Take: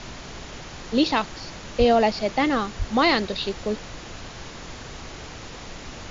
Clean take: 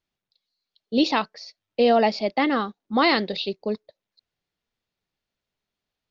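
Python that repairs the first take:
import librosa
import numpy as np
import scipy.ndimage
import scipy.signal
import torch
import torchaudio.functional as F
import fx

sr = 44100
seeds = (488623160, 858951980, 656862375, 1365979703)

y = fx.fix_deplosive(x, sr, at_s=(1.78, 2.78))
y = fx.noise_reduce(y, sr, print_start_s=5.17, print_end_s=5.67, reduce_db=30.0)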